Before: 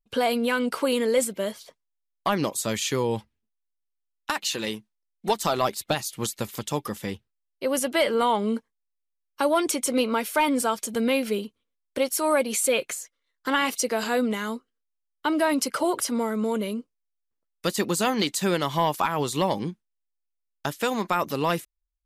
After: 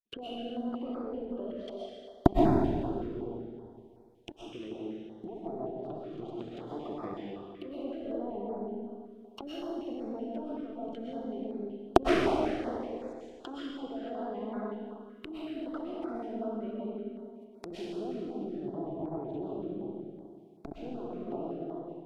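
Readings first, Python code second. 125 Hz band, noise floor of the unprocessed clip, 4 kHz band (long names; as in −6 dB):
−6.0 dB, −80 dBFS, −17.0 dB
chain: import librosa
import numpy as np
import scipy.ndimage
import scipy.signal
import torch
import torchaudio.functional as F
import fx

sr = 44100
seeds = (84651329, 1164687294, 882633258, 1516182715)

p1 = fx.recorder_agc(x, sr, target_db=-19.0, rise_db_per_s=56.0, max_gain_db=30)
p2 = p1 + fx.room_flutter(p1, sr, wall_m=10.9, rt60_s=0.4, dry=0)
p3 = fx.cheby_harmonics(p2, sr, harmonics=(6,), levels_db=(-7,), full_scale_db=9.5)
p4 = fx.sample_hold(p3, sr, seeds[0], rate_hz=12000.0, jitter_pct=0)
p5 = p3 + (p4 * 10.0 ** (-10.0 / 20.0))
p6 = fx.peak_eq(p5, sr, hz=3200.0, db=13.0, octaves=0.63)
p7 = fx.env_lowpass_down(p6, sr, base_hz=380.0, full_db=-15.0)
p8 = fx.peak_eq(p7, sr, hz=220.0, db=-2.5, octaves=2.1)
p9 = fx.small_body(p8, sr, hz=(350.0, 690.0), ring_ms=25, db=16)
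p10 = fx.level_steps(p9, sr, step_db=24)
p11 = fx.rev_freeverb(p10, sr, rt60_s=2.1, hf_ratio=0.95, predelay_ms=85, drr_db=-4.5)
p12 = fx.filter_held_notch(p11, sr, hz=5.3, low_hz=840.0, high_hz=3000.0)
y = p12 * 10.0 ** (-17.0 / 20.0)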